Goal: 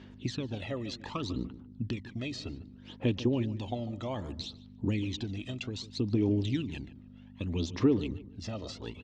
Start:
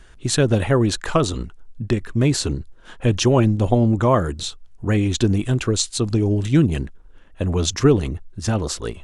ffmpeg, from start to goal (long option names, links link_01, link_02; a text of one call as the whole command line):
ffmpeg -i in.wav -filter_complex "[0:a]equalizer=frequency=800:width_type=o:width=1.8:gain=-11.5,acrossover=split=1300|2700[link_01][link_02][link_03];[link_01]acompressor=threshold=-27dB:ratio=4[link_04];[link_02]acompressor=threshold=-51dB:ratio=4[link_05];[link_03]acompressor=threshold=-37dB:ratio=4[link_06];[link_04][link_05][link_06]amix=inputs=3:normalize=0,aphaser=in_gain=1:out_gain=1:delay=1.6:decay=0.64:speed=0.64:type=sinusoidal,aeval=exprs='val(0)+0.0158*(sin(2*PI*50*n/s)+sin(2*PI*2*50*n/s)/2+sin(2*PI*3*50*n/s)/3+sin(2*PI*4*50*n/s)/4+sin(2*PI*5*50*n/s)/5)':channel_layout=same,highpass=140,equalizer=frequency=150:width_type=q:width=4:gain=-9,equalizer=frequency=280:width_type=q:width=4:gain=5,equalizer=frequency=560:width_type=q:width=4:gain=4,equalizer=frequency=900:width_type=q:width=4:gain=8,equalizer=frequency=1500:width_type=q:width=4:gain=-8,lowpass=frequency=4900:width=0.5412,lowpass=frequency=4900:width=1.3066,asplit=2[link_07][link_08];[link_08]adelay=147,lowpass=frequency=1900:poles=1,volume=-14.5dB,asplit=2[link_09][link_10];[link_10]adelay=147,lowpass=frequency=1900:poles=1,volume=0.28,asplit=2[link_11][link_12];[link_12]adelay=147,lowpass=frequency=1900:poles=1,volume=0.28[link_13];[link_07][link_09][link_11][link_13]amix=inputs=4:normalize=0,volume=-4.5dB" out.wav